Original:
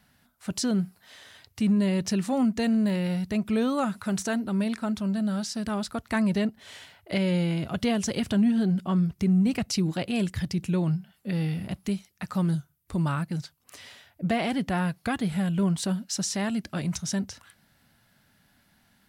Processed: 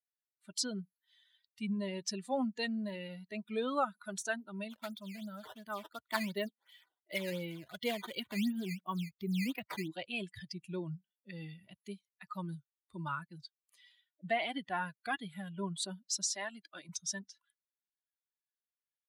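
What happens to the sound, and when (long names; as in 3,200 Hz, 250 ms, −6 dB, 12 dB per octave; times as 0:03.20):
0:04.70–0:09.88: sample-and-hold swept by an LFO 11×, swing 160% 2.8 Hz
0:16.35–0:16.89: high-pass filter 220 Hz
whole clip: spectral dynamics exaggerated over time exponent 2; meter weighting curve A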